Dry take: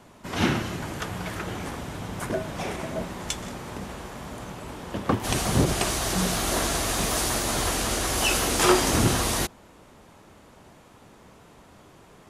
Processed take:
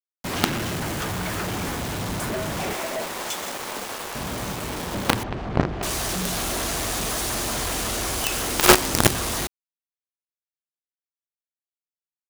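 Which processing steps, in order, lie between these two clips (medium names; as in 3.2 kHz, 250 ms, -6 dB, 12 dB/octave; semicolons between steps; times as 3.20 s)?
2.73–4.15 s: high-pass 430 Hz 12 dB/octave; companded quantiser 2-bit; 5.23–5.83 s: tape spacing loss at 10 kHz 44 dB; trim -1 dB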